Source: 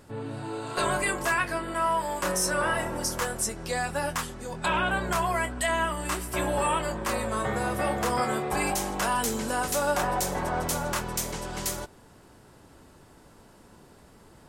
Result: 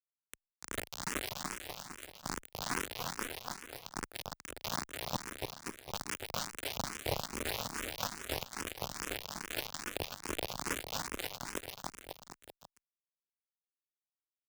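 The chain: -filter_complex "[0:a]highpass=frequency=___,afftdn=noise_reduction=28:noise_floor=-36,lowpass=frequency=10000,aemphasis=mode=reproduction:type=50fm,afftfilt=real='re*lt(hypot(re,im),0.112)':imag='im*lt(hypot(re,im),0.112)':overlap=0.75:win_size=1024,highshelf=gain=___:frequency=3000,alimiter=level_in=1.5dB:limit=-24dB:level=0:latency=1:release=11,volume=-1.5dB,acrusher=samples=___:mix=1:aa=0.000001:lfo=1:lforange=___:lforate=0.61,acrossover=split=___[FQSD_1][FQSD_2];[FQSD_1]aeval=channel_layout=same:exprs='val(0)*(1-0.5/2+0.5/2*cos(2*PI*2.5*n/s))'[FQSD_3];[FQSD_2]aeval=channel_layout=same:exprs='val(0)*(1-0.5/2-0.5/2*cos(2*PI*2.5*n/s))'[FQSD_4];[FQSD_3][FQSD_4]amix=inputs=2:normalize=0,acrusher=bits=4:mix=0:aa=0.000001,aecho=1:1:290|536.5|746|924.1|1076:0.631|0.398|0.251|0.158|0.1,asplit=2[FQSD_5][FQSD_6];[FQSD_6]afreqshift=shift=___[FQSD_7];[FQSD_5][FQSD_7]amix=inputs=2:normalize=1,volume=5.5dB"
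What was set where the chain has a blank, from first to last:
140, -6.5, 23, 23, 2000, 2.4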